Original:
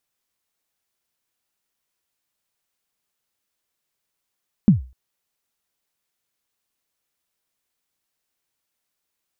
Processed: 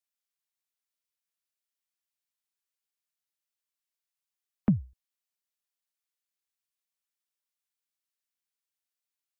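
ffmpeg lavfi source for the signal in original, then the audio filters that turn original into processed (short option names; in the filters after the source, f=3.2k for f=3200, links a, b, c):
-f lavfi -i "aevalsrc='0.562*pow(10,-3*t/0.33)*sin(2*PI*(230*0.132/log(63/230)*(exp(log(63/230)*min(t,0.132)/0.132)-1)+63*max(t-0.132,0)))':d=0.25:s=44100"
-filter_complex "[0:a]afftdn=nr=20:nf=-54,tiltshelf=f=670:g=-9,acrossover=split=250|380[a][b][c];[b]asoftclip=type=tanh:threshold=-29.5dB[d];[a][d][c]amix=inputs=3:normalize=0"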